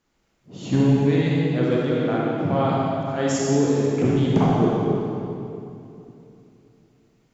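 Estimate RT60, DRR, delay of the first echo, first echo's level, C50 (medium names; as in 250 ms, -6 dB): 2.8 s, -5.0 dB, no echo, no echo, -3.5 dB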